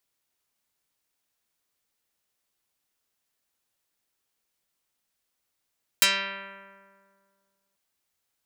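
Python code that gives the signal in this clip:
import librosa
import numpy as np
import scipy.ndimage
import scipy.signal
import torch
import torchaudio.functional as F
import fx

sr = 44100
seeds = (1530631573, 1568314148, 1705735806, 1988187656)

y = fx.pluck(sr, length_s=1.74, note=55, decay_s=2.06, pick=0.47, brightness='dark')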